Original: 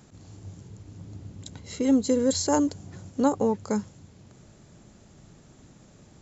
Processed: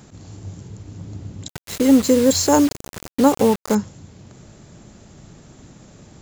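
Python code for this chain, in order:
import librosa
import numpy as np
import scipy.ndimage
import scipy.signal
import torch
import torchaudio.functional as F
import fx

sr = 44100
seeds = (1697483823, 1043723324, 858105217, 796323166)

y = fx.quant_dither(x, sr, seeds[0], bits=6, dither='none', at=(1.48, 3.75))
y = y * librosa.db_to_amplitude(8.0)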